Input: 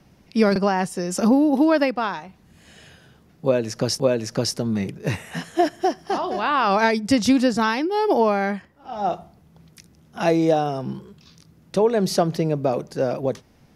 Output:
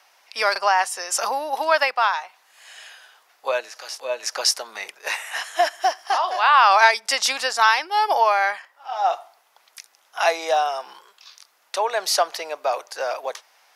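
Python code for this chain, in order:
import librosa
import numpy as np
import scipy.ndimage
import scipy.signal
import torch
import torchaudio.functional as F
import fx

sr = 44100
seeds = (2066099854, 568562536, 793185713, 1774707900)

y = fx.hpss(x, sr, part='percussive', gain_db=-16, at=(3.6, 4.23))
y = scipy.signal.sosfilt(scipy.signal.butter(4, 770.0, 'highpass', fs=sr, output='sos'), y)
y = F.gain(torch.from_numpy(y), 7.0).numpy()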